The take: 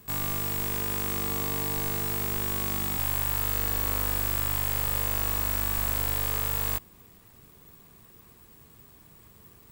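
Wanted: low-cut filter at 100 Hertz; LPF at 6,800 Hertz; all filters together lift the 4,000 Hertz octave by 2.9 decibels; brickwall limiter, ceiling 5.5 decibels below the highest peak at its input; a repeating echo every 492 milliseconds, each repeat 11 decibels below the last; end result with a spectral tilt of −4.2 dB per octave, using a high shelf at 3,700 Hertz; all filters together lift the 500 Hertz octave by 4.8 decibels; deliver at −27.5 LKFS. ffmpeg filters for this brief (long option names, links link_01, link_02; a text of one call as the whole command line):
ffmpeg -i in.wav -af "highpass=100,lowpass=6800,equalizer=frequency=500:width_type=o:gain=6,highshelf=frequency=3700:gain=-7,equalizer=frequency=4000:width_type=o:gain=8.5,alimiter=limit=-22.5dB:level=0:latency=1,aecho=1:1:492|984|1476:0.282|0.0789|0.0221,volume=8.5dB" out.wav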